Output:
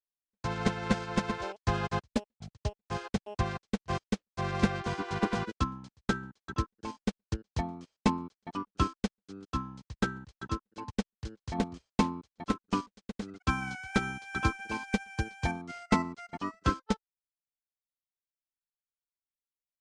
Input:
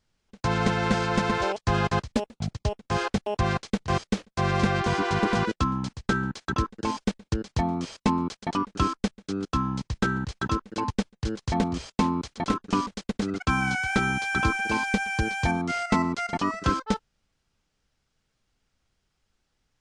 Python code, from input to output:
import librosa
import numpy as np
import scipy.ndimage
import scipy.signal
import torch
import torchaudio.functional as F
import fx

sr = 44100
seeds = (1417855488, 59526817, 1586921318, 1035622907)

y = fx.upward_expand(x, sr, threshold_db=-45.0, expansion=2.5)